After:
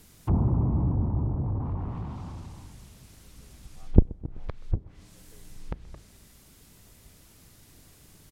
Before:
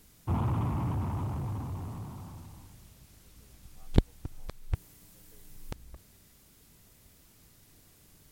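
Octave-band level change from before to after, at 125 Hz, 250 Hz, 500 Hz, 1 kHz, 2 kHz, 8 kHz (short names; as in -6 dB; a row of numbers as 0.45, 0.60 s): +5.5, +5.5, +4.5, -1.5, -3.5, +1.0 dB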